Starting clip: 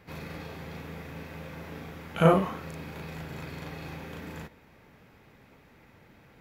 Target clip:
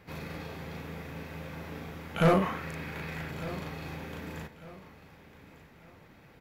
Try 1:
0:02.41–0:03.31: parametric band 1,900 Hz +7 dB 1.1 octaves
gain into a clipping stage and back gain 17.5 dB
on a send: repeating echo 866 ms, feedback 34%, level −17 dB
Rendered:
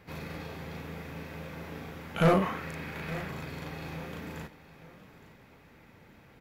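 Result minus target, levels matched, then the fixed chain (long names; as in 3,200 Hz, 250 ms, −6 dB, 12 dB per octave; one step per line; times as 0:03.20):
echo 334 ms early
0:02.41–0:03.31: parametric band 1,900 Hz +7 dB 1.1 octaves
gain into a clipping stage and back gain 17.5 dB
on a send: repeating echo 1,200 ms, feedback 34%, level −17 dB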